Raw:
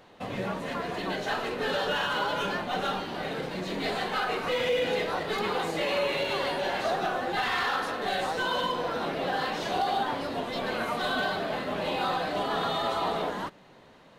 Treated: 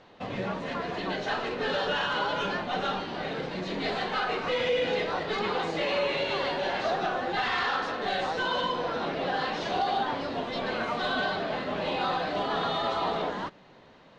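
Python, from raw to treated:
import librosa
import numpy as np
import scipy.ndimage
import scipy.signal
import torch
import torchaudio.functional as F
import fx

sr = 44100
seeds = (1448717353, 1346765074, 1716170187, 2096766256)

y = scipy.signal.sosfilt(scipy.signal.butter(4, 6100.0, 'lowpass', fs=sr, output='sos'), x)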